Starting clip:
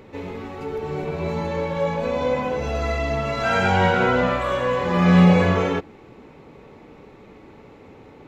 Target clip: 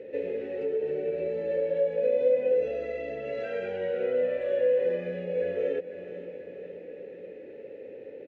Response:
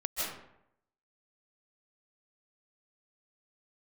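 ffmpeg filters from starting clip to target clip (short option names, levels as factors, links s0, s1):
-filter_complex "[0:a]aecho=1:1:492|984|1476|1968:0.0668|0.0368|0.0202|0.0111,acompressor=threshold=0.0355:ratio=6,asplit=3[s0][s1][s2];[s0]bandpass=f=530:t=q:w=8,volume=1[s3];[s1]bandpass=f=1840:t=q:w=8,volume=0.501[s4];[s2]bandpass=f=2480:t=q:w=8,volume=0.355[s5];[s3][s4][s5]amix=inputs=3:normalize=0,lowshelf=f=580:t=q:w=1.5:g=6.5,volume=2.11"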